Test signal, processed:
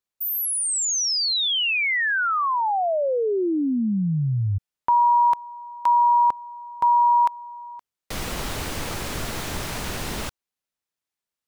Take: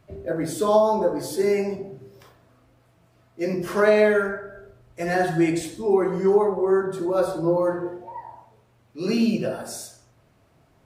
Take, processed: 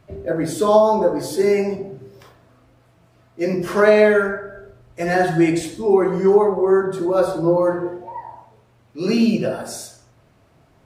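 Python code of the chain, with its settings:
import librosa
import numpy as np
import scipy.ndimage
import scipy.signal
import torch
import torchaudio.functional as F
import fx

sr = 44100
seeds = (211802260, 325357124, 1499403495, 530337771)

y = fx.high_shelf(x, sr, hz=10000.0, db=-5.0)
y = y * librosa.db_to_amplitude(4.5)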